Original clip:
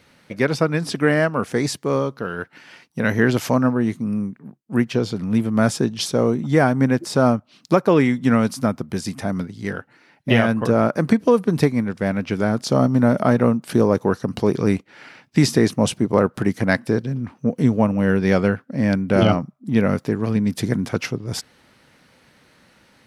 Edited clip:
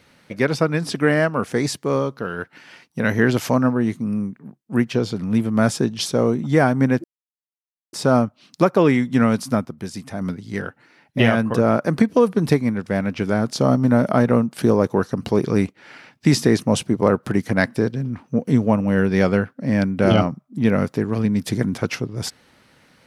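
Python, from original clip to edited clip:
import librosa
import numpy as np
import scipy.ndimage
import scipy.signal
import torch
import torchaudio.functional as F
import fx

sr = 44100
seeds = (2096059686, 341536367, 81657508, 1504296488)

y = fx.edit(x, sr, fx.insert_silence(at_s=7.04, length_s=0.89),
    fx.clip_gain(start_s=8.76, length_s=0.56, db=-5.0), tone=tone)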